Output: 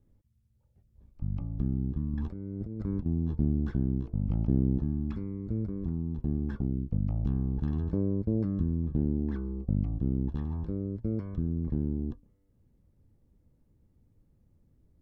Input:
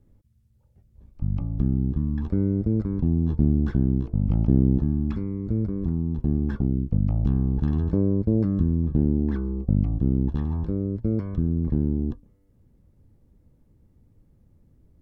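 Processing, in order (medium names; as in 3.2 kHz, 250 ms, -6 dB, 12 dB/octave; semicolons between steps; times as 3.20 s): 2.13–3.06 s: compressor with a negative ratio -26 dBFS, ratio -0.5; trim -7 dB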